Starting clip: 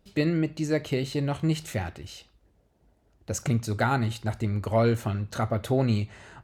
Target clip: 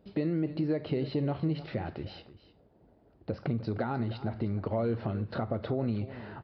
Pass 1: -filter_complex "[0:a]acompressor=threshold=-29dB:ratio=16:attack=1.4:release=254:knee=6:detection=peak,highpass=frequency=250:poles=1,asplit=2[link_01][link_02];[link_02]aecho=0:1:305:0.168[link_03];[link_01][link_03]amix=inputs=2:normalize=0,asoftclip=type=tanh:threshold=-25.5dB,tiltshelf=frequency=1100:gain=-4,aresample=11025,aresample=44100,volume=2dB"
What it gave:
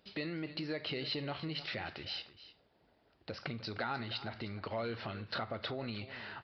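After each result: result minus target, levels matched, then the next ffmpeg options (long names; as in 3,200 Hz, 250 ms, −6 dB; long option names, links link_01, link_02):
soft clipping: distortion +11 dB; 1,000 Hz band +4.5 dB
-filter_complex "[0:a]acompressor=threshold=-29dB:ratio=16:attack=1.4:release=254:knee=6:detection=peak,highpass=frequency=250:poles=1,asplit=2[link_01][link_02];[link_02]aecho=0:1:305:0.168[link_03];[link_01][link_03]amix=inputs=2:normalize=0,asoftclip=type=tanh:threshold=-19dB,tiltshelf=frequency=1100:gain=-4,aresample=11025,aresample=44100,volume=2dB"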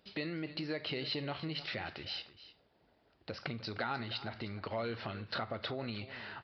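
1,000 Hz band +4.5 dB
-filter_complex "[0:a]acompressor=threshold=-29dB:ratio=16:attack=1.4:release=254:knee=6:detection=peak,highpass=frequency=250:poles=1,asplit=2[link_01][link_02];[link_02]aecho=0:1:305:0.168[link_03];[link_01][link_03]amix=inputs=2:normalize=0,asoftclip=type=tanh:threshold=-19dB,tiltshelf=frequency=1100:gain=8,aresample=11025,aresample=44100,volume=2dB"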